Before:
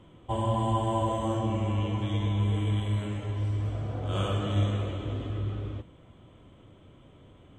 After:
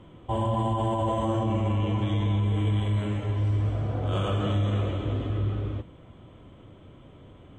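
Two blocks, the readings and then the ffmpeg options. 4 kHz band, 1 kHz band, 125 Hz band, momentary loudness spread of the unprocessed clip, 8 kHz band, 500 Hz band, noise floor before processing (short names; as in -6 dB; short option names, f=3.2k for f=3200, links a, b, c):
+0.5 dB, +1.5 dB, +3.0 dB, 7 LU, n/a, +2.5 dB, -55 dBFS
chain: -af "highshelf=f=4.7k:g=-8,alimiter=limit=-23dB:level=0:latency=1:release=22,volume=4.5dB"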